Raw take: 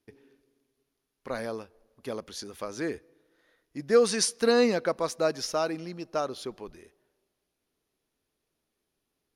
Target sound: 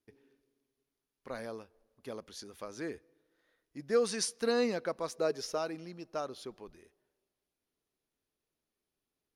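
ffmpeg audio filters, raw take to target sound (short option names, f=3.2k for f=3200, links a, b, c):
-filter_complex "[0:a]asettb=1/sr,asplit=3[a][b][c];[a]atrim=end=5.144[d];[b]atrim=start=5.14:end=5.58,asetpts=PTS-STARTPTS,afade=t=in:d=0.004:c=qsin,afade=t=out:st=0.436:d=0.004:c=qsin,equalizer=f=420:t=o:w=0.28:g=13[e];[c]atrim=start=5.576[f];[d][e]acrossfade=d=0.004:c1=hsin:c2=qsin[g];[g][f]acrossfade=d=0.004:c1=qsin:c2=hsin,volume=-7.5dB"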